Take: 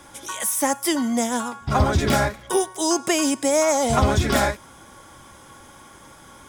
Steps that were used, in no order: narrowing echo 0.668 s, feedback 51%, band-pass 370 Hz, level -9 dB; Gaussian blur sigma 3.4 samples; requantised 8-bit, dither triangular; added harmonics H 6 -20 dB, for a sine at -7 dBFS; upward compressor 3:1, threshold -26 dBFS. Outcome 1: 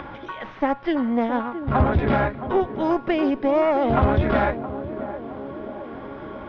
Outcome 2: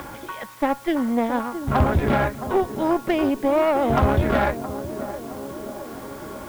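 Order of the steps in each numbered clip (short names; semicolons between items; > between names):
added harmonics > narrowing echo > upward compressor > requantised > Gaussian blur; narrowing echo > upward compressor > Gaussian blur > added harmonics > requantised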